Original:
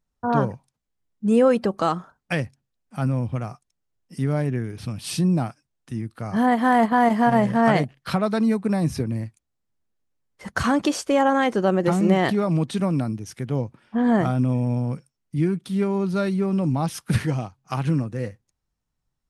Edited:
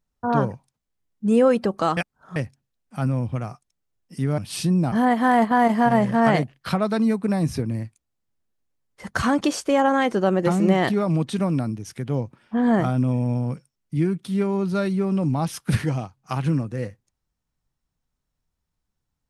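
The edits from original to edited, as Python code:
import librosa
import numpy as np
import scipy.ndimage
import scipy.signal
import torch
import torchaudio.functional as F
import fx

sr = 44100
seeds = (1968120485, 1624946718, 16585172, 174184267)

y = fx.edit(x, sr, fx.reverse_span(start_s=1.97, length_s=0.39),
    fx.cut(start_s=4.38, length_s=0.54),
    fx.cut(start_s=5.46, length_s=0.87), tone=tone)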